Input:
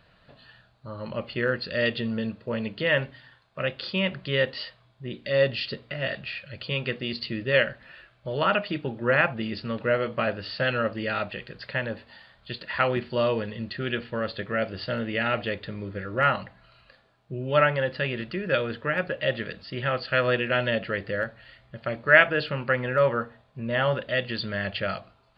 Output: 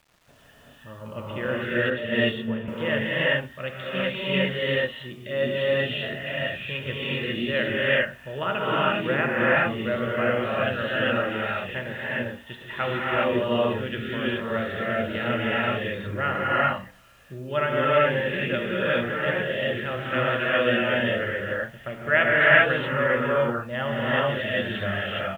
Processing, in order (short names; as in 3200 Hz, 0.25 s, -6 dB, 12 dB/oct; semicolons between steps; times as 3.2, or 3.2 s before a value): non-linear reverb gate 0.44 s rising, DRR -7 dB; downsampling 8000 Hz; bit-crush 9-bit; 1.9–2.68 three-band expander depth 100%; gain -5 dB